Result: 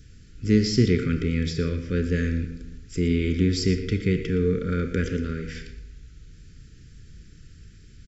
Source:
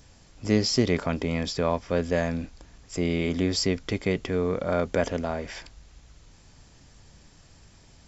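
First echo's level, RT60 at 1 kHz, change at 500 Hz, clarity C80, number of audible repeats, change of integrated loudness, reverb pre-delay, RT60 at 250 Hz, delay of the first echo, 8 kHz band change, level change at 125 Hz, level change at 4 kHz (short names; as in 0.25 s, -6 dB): -13.5 dB, 0.95 s, -1.0 dB, 9.5 dB, 1, +2.0 dB, 28 ms, 1.1 s, 0.117 s, n/a, +6.5 dB, -2.0 dB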